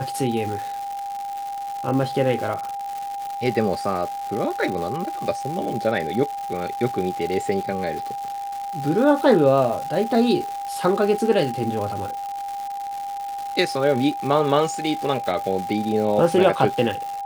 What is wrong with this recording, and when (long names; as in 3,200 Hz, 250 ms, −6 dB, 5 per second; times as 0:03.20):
surface crackle 290 per second −28 dBFS
whistle 800 Hz −27 dBFS